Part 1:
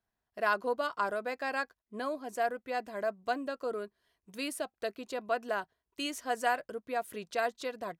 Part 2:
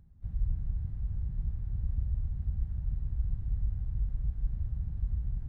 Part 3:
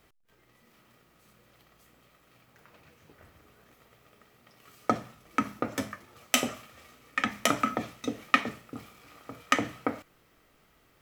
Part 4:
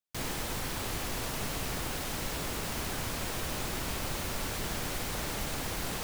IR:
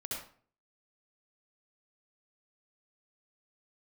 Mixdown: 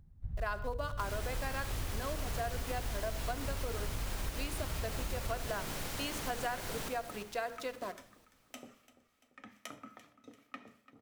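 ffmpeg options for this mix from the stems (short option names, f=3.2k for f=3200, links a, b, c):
-filter_complex "[0:a]aeval=exprs='val(0)*gte(abs(val(0)),0.00668)':c=same,volume=-2.5dB,asplit=2[a][b];[b]volume=-14.5dB[c];[1:a]acompressor=threshold=-30dB:ratio=6,volume=0dB[d];[2:a]acrossover=split=910[e][f];[e]aeval=exprs='val(0)*(1-0.7/2+0.7/2*cos(2*PI*2.5*n/s))':c=same[g];[f]aeval=exprs='val(0)*(1-0.7/2-0.7/2*cos(2*PI*2.5*n/s))':c=same[h];[g][h]amix=inputs=2:normalize=0,adelay=2200,volume=-19.5dB,asplit=3[i][j][k];[j]volume=-15dB[l];[k]volume=-15.5dB[m];[3:a]adelay=850,volume=-8dB,asplit=3[n][o][p];[o]volume=-3dB[q];[p]volume=-7.5dB[r];[4:a]atrim=start_sample=2205[s];[c][l][q]amix=inputs=3:normalize=0[t];[t][s]afir=irnorm=-1:irlink=0[u];[m][r]amix=inputs=2:normalize=0,aecho=0:1:341|682|1023|1364|1705|2046|2387|2728:1|0.53|0.281|0.149|0.0789|0.0418|0.0222|0.0117[v];[a][d][i][n][u][v]amix=inputs=6:normalize=0,bandreject=f=60:t=h:w=6,bandreject=f=120:t=h:w=6,bandreject=f=180:t=h:w=6,bandreject=f=240:t=h:w=6,bandreject=f=300:t=h:w=6,bandreject=f=360:t=h:w=6,bandreject=f=420:t=h:w=6,bandreject=f=480:t=h:w=6,acompressor=threshold=-33dB:ratio=4"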